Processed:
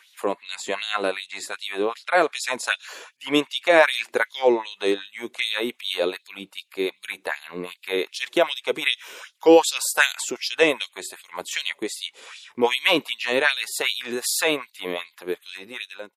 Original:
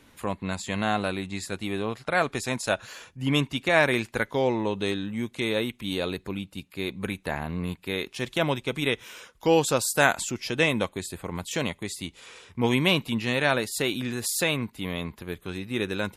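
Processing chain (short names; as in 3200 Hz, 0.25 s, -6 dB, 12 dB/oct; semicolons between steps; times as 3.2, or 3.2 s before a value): ending faded out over 0.69 s; LFO high-pass sine 2.6 Hz 340–4000 Hz; gain +2.5 dB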